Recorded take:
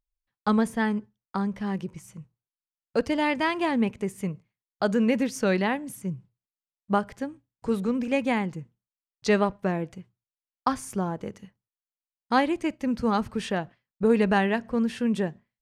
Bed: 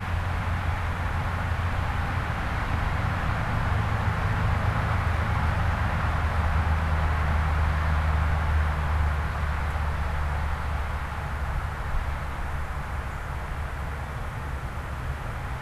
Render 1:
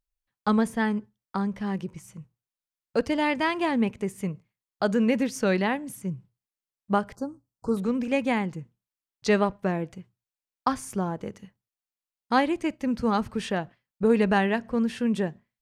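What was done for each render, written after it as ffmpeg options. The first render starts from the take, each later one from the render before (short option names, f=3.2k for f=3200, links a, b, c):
-filter_complex "[0:a]asettb=1/sr,asplit=3[a][b][c];[a]atrim=end=7.154[d];[b]atrim=start=7.15:end=7.77,asetpts=PTS-STARTPTS,afade=t=in:d=0.004:c=qsin,afade=t=out:st=0.616:d=0.004:c=qsin,asuperstop=centerf=2500:order=12:qfactor=0.86[e];[c]atrim=start=7.766[f];[d][e]acrossfade=d=0.004:c1=hsin:c2=qsin[g];[g][f]acrossfade=d=0.004:c1=qsin:c2=hsin"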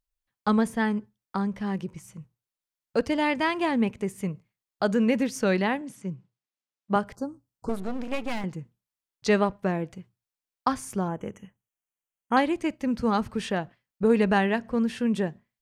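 -filter_complex "[0:a]asettb=1/sr,asplit=3[a][b][c];[a]atrim=end=5.814[d];[b]atrim=start=5.81:end=6.96,asetpts=PTS-STARTPTS,afade=t=in:d=0.004:c=qsin,afade=t=out:st=1.146:d=0.004:c=qsin,highpass=160,lowpass=6.6k[e];[c]atrim=start=6.956[f];[d][e]acrossfade=d=0.004:c1=hsin:c2=qsin[g];[g][f]acrossfade=d=0.004:c1=qsin:c2=hsin,asettb=1/sr,asplit=3[h][i][j];[h]atrim=end=7.694[k];[i]atrim=start=7.69:end=8.44,asetpts=PTS-STARTPTS,afade=t=in:d=0.004:c=qsin,afade=t=out:st=0.746:d=0.004:c=qsin,aeval=exprs='max(val(0),0)':c=same[l];[j]atrim=start=8.436[m];[k][l]acrossfade=d=0.004:c1=hsin:c2=qsin[n];[n][m]acrossfade=d=0.004:c1=qsin:c2=hsin,asettb=1/sr,asplit=3[o][p][q];[o]atrim=end=11.084[r];[p]atrim=start=11.08:end=12.37,asetpts=PTS-STARTPTS,afade=t=in:d=0.004:c=qsin,afade=t=out:st=1.286:d=0.004:c=qsin,asuperstop=centerf=4400:order=20:qfactor=1.8[s];[q]atrim=start=12.366[t];[r][s]acrossfade=d=0.004:c1=hsin:c2=qsin[u];[u][t]acrossfade=d=0.004:c1=qsin:c2=hsin"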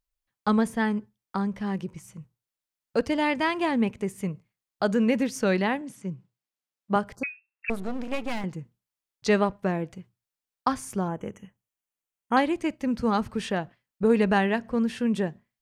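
-filter_complex "[0:a]asettb=1/sr,asplit=3[a][b][c];[a]atrim=end=7.234[d];[b]atrim=start=7.23:end=7.7,asetpts=PTS-STARTPTS,afade=t=in:d=0.004:c=qsin,afade=t=out:st=0.466:d=0.004:c=qsin,lowpass=f=2.4k:t=q:w=0.5098,lowpass=f=2.4k:t=q:w=0.6013,lowpass=f=2.4k:t=q:w=0.9,lowpass=f=2.4k:t=q:w=2.563,afreqshift=-2800[e];[c]atrim=start=7.696[f];[d][e]acrossfade=d=0.004:c1=hsin:c2=qsin[g];[g][f]acrossfade=d=0.004:c1=qsin:c2=hsin"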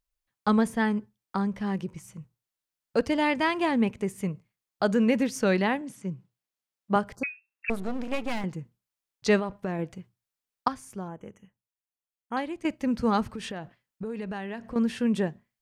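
-filter_complex "[0:a]asettb=1/sr,asplit=3[a][b][c];[a]atrim=end=9.394[d];[b]atrim=start=9.39:end=9.79,asetpts=PTS-STARTPTS,afade=t=in:d=0.004:c=qsin,afade=t=out:st=0.396:d=0.004:c=qsin,acompressor=threshold=-26dB:ratio=6:attack=3.2:release=140:knee=1:detection=peak[e];[c]atrim=start=9.786[f];[d][e]acrossfade=d=0.004:c1=hsin:c2=qsin[g];[g][f]acrossfade=d=0.004:c1=qsin:c2=hsin,asettb=1/sr,asplit=3[h][i][j];[h]atrim=end=13.274[k];[i]atrim=start=13.27:end=14.76,asetpts=PTS-STARTPTS,afade=t=in:d=0.004:c=qsin,afade=t=out:st=1.486:d=0.004:c=qsin,acompressor=threshold=-32dB:ratio=6:attack=3.2:release=140:knee=1:detection=peak[l];[j]atrim=start=14.756[m];[k][l]acrossfade=d=0.004:c1=hsin:c2=qsin[n];[n][m]acrossfade=d=0.004:c1=qsin:c2=hsin,asplit=3[o][p][q];[o]atrim=end=10.682[r];[p]atrim=start=10.678:end=12.652,asetpts=PTS-STARTPTS,volume=-8.5dB[s];[q]atrim=start=12.648[t];[r][s]acrossfade=d=0.004:c1=hsin:c2=hsin[u];[u][t]acrossfade=d=0.004:c1=hsin:c2=hsin"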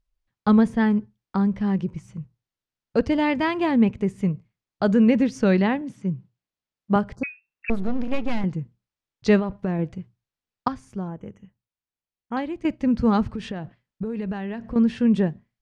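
-af "lowpass=5.4k,lowshelf=f=280:g=11"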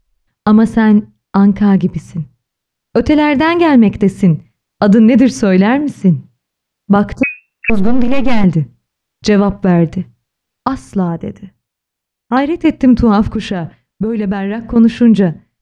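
-af "dynaudnorm=f=200:g=31:m=4dB,alimiter=level_in=13dB:limit=-1dB:release=50:level=0:latency=1"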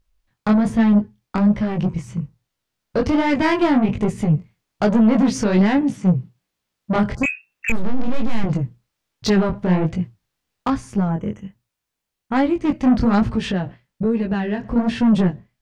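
-af "asoftclip=type=tanh:threshold=-9.5dB,flanger=delay=17.5:depth=6.6:speed=1.2"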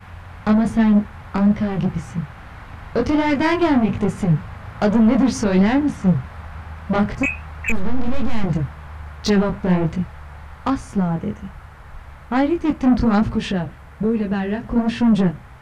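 -filter_complex "[1:a]volume=-10dB[a];[0:a][a]amix=inputs=2:normalize=0"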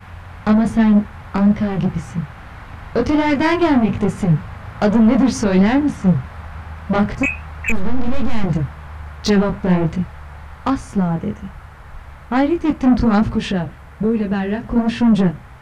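-af "volume=2dB"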